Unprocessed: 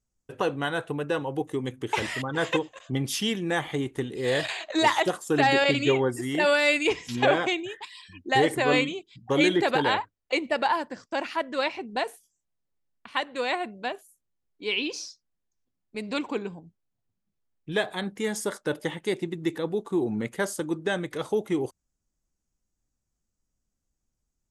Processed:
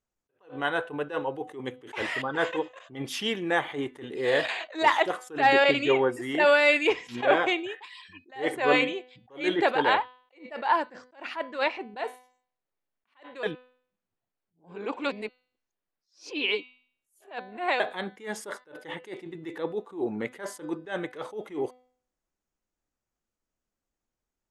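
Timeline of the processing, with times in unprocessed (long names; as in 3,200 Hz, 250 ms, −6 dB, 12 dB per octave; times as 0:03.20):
0:13.43–0:17.80: reverse
whole clip: bass and treble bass −13 dB, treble −12 dB; hum removal 251.5 Hz, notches 19; level that may rise only so fast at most 180 dB per second; level +3 dB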